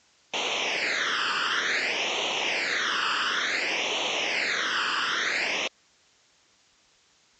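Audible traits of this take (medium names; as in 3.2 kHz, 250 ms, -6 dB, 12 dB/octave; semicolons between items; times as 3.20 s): phasing stages 12, 0.56 Hz, lowest notch 680–1600 Hz; a quantiser's noise floor 10-bit, dither triangular; Vorbis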